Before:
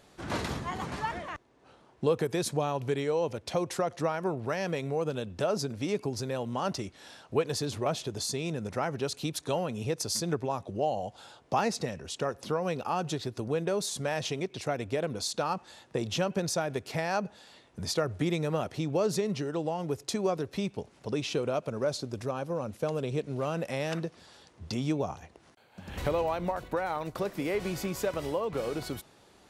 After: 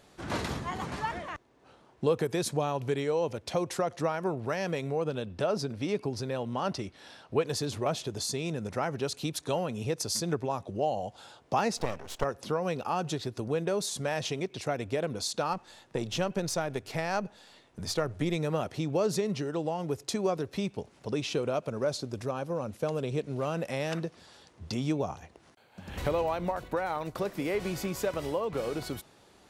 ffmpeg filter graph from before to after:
ffmpeg -i in.wav -filter_complex "[0:a]asettb=1/sr,asplit=3[link_01][link_02][link_03];[link_01]atrim=end=4.924[link_04];[link_02]atrim=start=4.92:end=7.42,asetpts=PTS-STARTPTS,afade=type=in:duration=0.004:curve=qsin,afade=type=out:start_time=2.496:duration=0.004:curve=qsin,lowpass=9500,equalizer=frequency=7000:width=2.7:gain=-6.5[link_05];[link_03]atrim=start=7.416[link_06];[link_04][link_05]acrossfade=duration=0.004:curve1=hsin:curve2=qsin[link_07];[link_07][link_06]acrossfade=duration=0.004:curve1=qsin:curve2=hsin,asettb=1/sr,asplit=3[link_08][link_09][link_10];[link_08]atrim=end=11.774[link_11];[link_09]atrim=start=11.77:end=12.24,asetpts=PTS-STARTPTS,afade=type=in:duration=0.004:curve=qsin,afade=type=out:start_time=0.466:duration=0.004:curve=qsin,equalizer=frequency=750:width_type=o:width=1.4:gain=12,aeval=exprs='max(val(0),0)':channel_layout=same[link_12];[link_10]atrim=start=12.236[link_13];[link_11][link_12]acrossfade=duration=0.004:curve1=hsin:curve2=qsin[link_14];[link_14][link_13]acrossfade=duration=0.004:curve1=qsin:curve2=hsin,asettb=1/sr,asplit=3[link_15][link_16][link_17];[link_15]atrim=end=15.534[link_18];[link_16]atrim=start=15.53:end=18.36,asetpts=PTS-STARTPTS,afade=type=in:duration=0.004:curve=qsin,afade=type=out:start_time=2.826:duration=0.004:curve=qsin,aeval=exprs='if(lt(val(0),0),0.708*val(0),val(0))':channel_layout=same,bandreject=frequency=50:width_type=h:width=6,bandreject=frequency=100:width_type=h:width=6[link_19];[link_17]atrim=start=18.356[link_20];[link_18][link_19]acrossfade=duration=0.004:curve1=hsin:curve2=qsin[link_21];[link_21][link_20]acrossfade=duration=0.004:curve1=qsin:curve2=hsin" out.wav

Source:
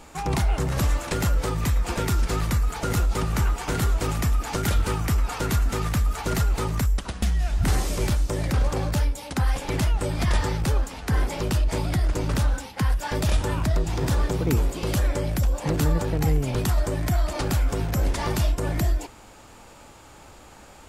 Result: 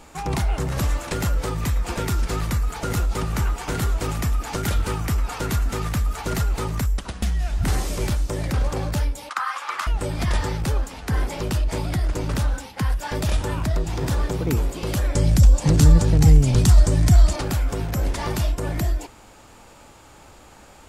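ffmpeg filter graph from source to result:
ffmpeg -i in.wav -filter_complex "[0:a]asettb=1/sr,asplit=3[link_01][link_02][link_03];[link_01]atrim=end=9.294[link_04];[link_02]atrim=start=9.29:end=9.87,asetpts=PTS-STARTPTS,afade=type=in:duration=0.004:curve=qsin,afade=type=out:start_time=0.576:duration=0.004:curve=qsin,highpass=frequency=1200:width_type=q:width=6.7,highshelf=frequency=9200:gain=-10[link_05];[link_03]atrim=start=9.866[link_06];[link_04][link_05]acrossfade=duration=0.004:curve1=hsin:curve2=qsin[link_07];[link_07][link_06]acrossfade=duration=0.004:curve1=qsin:curve2=hsin,asettb=1/sr,asplit=3[link_08][link_09][link_10];[link_08]atrim=end=15.154[link_11];[link_09]atrim=start=15.15:end=17.36,asetpts=PTS-STARTPTS,afade=type=in:duration=0.004:curve=qsin,afade=type=out:start_time=2.206:duration=0.004:curve=qsin,lowpass=7900,bass=frequency=250:gain=10,treble=frequency=4000:gain=12[link_12];[link_10]atrim=start=17.356[link_13];[link_11][link_12]acrossfade=duration=0.004:curve1=hsin:curve2=qsin[link_14];[link_14][link_13]acrossfade=duration=0.004:curve1=qsin:curve2=hsin" out.wav

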